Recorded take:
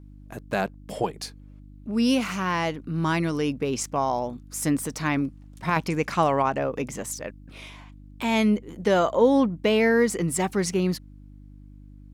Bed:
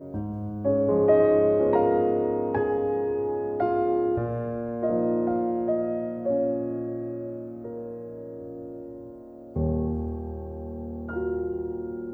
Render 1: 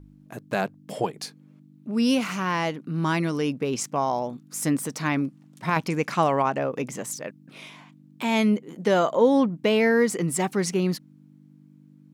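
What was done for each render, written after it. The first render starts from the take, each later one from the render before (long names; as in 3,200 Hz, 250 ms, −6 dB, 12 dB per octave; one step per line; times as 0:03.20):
hum removal 50 Hz, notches 2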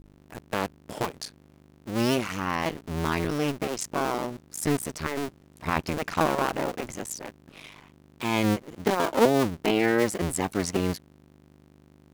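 sub-harmonics by changed cycles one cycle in 2, muted
floating-point word with a short mantissa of 4 bits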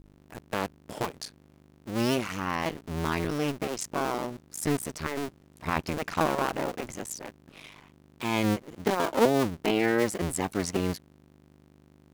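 level −2 dB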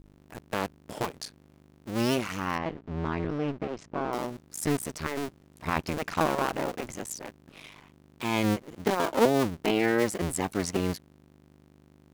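0:02.58–0:04.13: head-to-tape spacing loss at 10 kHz 30 dB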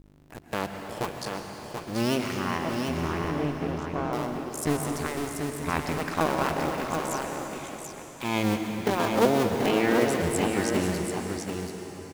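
single-tap delay 734 ms −5.5 dB
dense smooth reverb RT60 3.9 s, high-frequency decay 1×, pre-delay 100 ms, DRR 4.5 dB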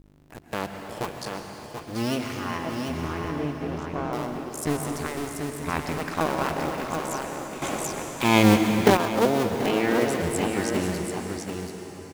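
0:01.66–0:03.72: notch comb filter 190 Hz
0:07.62–0:08.97: clip gain +9 dB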